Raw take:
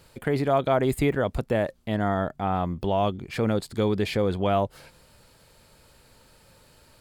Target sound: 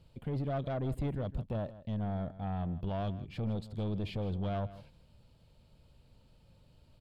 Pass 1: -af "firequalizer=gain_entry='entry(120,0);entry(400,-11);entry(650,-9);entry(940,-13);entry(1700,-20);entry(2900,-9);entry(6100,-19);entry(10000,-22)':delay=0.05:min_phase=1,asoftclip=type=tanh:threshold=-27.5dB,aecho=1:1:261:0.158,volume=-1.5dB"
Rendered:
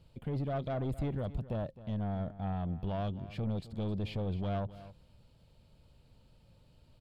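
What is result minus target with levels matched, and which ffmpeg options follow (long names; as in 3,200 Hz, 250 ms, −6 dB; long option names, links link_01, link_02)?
echo 101 ms late
-af "firequalizer=gain_entry='entry(120,0);entry(400,-11);entry(650,-9);entry(940,-13);entry(1700,-20);entry(2900,-9);entry(6100,-19);entry(10000,-22)':delay=0.05:min_phase=1,asoftclip=type=tanh:threshold=-27.5dB,aecho=1:1:160:0.158,volume=-1.5dB"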